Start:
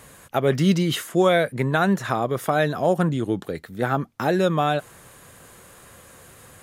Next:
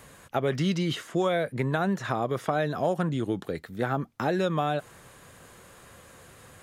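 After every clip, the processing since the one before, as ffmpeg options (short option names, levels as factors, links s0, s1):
-filter_complex "[0:a]acrossover=split=930|7200[s0][s1][s2];[s0]acompressor=threshold=0.0891:ratio=4[s3];[s1]acompressor=threshold=0.0316:ratio=4[s4];[s2]acompressor=threshold=0.00112:ratio=4[s5];[s3][s4][s5]amix=inputs=3:normalize=0,volume=0.75"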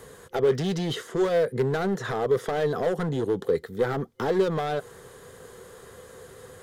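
-af "volume=20,asoftclip=hard,volume=0.0501,superequalizer=7b=3.55:12b=0.501,volume=1.19"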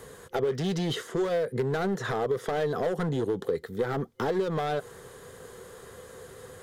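-af "acompressor=threshold=0.0631:ratio=6"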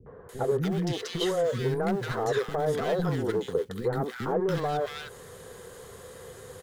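-filter_complex "[0:a]asplit=2[s0][s1];[s1]acrusher=bits=5:mode=log:mix=0:aa=0.000001,volume=0.282[s2];[s0][s2]amix=inputs=2:normalize=0,acrossover=split=300|1400[s3][s4][s5];[s4]adelay=60[s6];[s5]adelay=290[s7];[s3][s6][s7]amix=inputs=3:normalize=0"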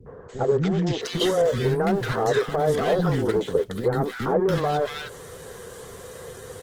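-af "volume=1.88" -ar 48000 -c:a libopus -b:a 16k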